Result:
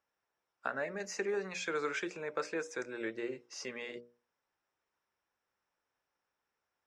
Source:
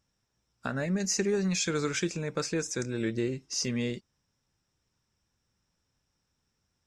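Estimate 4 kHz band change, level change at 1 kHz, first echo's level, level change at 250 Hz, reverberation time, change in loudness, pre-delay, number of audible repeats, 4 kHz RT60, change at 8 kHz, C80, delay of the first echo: −11.5 dB, −0.5 dB, no echo audible, −13.0 dB, no reverb audible, −8.0 dB, no reverb audible, no echo audible, no reverb audible, −15.0 dB, no reverb audible, no echo audible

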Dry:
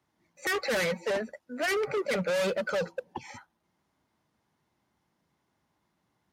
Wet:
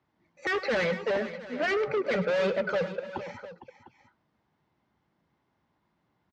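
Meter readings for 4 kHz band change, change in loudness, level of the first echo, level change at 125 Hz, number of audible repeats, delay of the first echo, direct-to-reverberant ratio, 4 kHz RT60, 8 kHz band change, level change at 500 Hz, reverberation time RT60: −2.5 dB, +1.0 dB, −15.5 dB, +2.0 dB, 3, 103 ms, no reverb audible, no reverb audible, below −10 dB, +2.0 dB, no reverb audible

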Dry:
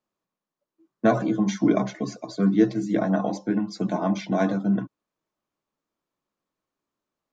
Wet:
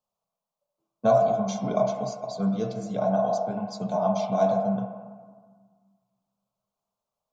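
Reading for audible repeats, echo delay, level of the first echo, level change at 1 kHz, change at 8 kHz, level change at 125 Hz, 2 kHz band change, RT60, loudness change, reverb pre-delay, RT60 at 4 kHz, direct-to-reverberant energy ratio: no echo audible, no echo audible, no echo audible, +4.0 dB, can't be measured, −3.5 dB, −10.0 dB, 1.6 s, −1.5 dB, 28 ms, 0.90 s, 2.5 dB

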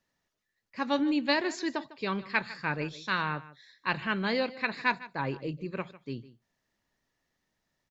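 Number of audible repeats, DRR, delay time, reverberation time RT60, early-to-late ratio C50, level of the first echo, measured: 1, no reverb audible, 152 ms, no reverb audible, no reverb audible, −17.5 dB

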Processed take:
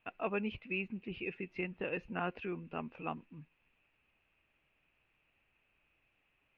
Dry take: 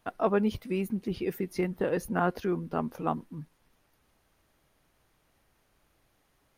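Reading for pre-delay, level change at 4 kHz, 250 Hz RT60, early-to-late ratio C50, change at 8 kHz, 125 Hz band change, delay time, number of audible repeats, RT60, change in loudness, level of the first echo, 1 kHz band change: no reverb audible, −3.5 dB, no reverb audible, no reverb audible, below −25 dB, −11.0 dB, no echo audible, no echo audible, no reverb audible, −9.0 dB, no echo audible, −9.5 dB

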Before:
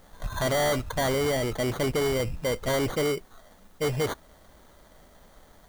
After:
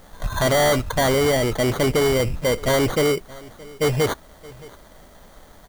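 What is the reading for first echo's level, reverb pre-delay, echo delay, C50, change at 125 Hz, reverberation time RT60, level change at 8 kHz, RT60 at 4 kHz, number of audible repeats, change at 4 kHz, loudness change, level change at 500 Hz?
−22.0 dB, no reverb audible, 621 ms, no reverb audible, +7.0 dB, no reverb audible, +7.0 dB, no reverb audible, 1, +7.0 dB, +7.0 dB, +7.0 dB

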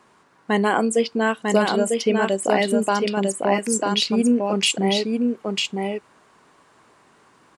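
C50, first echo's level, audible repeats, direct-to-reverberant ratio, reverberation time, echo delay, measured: no reverb audible, −3.5 dB, 1, no reverb audible, no reverb audible, 948 ms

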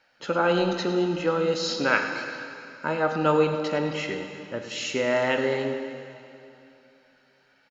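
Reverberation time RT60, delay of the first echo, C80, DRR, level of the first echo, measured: 2.9 s, 103 ms, 6.5 dB, 5.0 dB, −13.0 dB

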